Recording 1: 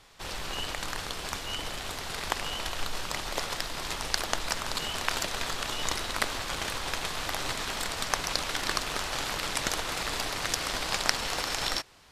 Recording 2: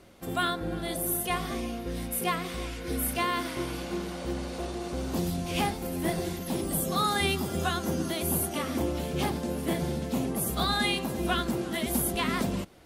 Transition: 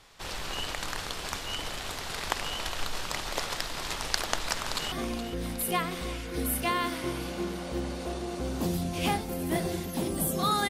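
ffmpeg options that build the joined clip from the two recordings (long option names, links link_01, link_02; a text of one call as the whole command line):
ffmpeg -i cue0.wav -i cue1.wav -filter_complex "[0:a]apad=whole_dur=10.69,atrim=end=10.69,atrim=end=4.922[link_01];[1:a]atrim=start=1.448:end=7.22[link_02];[link_01][link_02]acrossfade=duration=0.004:curve1=hsin:curve2=hsin,asplit=2[link_03][link_04];[link_04]afade=type=in:start_time=4.56:duration=0.01,afade=type=out:start_time=4.92:duration=0.01,aecho=0:1:420|840|1260|1680|2100|2520|2940|3360|3780|4200|4620|5040:0.266073|0.199554|0.149666|0.112249|0.084187|0.0631403|0.0473552|0.0355164|0.0266373|0.019978|0.0149835|0.0112376[link_05];[link_03][link_05]amix=inputs=2:normalize=0" out.wav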